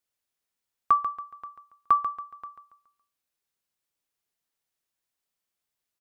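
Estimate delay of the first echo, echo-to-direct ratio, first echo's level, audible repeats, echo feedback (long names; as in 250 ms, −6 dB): 140 ms, −8.5 dB, −9.0 dB, 4, 37%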